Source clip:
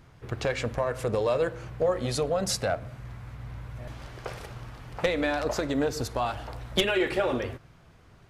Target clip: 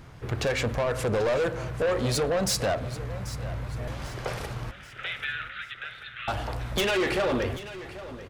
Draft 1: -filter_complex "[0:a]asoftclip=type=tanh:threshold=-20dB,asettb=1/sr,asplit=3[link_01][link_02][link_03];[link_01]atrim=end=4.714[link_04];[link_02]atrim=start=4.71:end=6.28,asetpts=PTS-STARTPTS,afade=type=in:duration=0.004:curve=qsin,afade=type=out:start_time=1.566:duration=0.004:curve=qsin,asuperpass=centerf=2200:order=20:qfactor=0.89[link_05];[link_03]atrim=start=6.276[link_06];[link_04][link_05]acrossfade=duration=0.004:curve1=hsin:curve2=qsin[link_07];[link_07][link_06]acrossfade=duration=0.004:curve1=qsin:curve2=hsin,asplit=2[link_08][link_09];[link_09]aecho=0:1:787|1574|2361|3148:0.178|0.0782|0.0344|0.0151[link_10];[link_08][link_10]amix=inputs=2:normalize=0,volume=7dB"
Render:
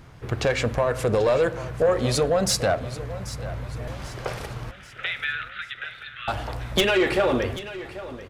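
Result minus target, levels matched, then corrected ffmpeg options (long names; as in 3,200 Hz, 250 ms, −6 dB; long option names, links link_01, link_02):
soft clipping: distortion −9 dB
-filter_complex "[0:a]asoftclip=type=tanh:threshold=-29dB,asettb=1/sr,asplit=3[link_01][link_02][link_03];[link_01]atrim=end=4.714[link_04];[link_02]atrim=start=4.71:end=6.28,asetpts=PTS-STARTPTS,afade=type=in:duration=0.004:curve=qsin,afade=type=out:start_time=1.566:duration=0.004:curve=qsin,asuperpass=centerf=2200:order=20:qfactor=0.89[link_05];[link_03]atrim=start=6.276[link_06];[link_04][link_05]acrossfade=duration=0.004:curve1=hsin:curve2=qsin[link_07];[link_07][link_06]acrossfade=duration=0.004:curve1=qsin:curve2=hsin,asplit=2[link_08][link_09];[link_09]aecho=0:1:787|1574|2361|3148:0.178|0.0782|0.0344|0.0151[link_10];[link_08][link_10]amix=inputs=2:normalize=0,volume=7dB"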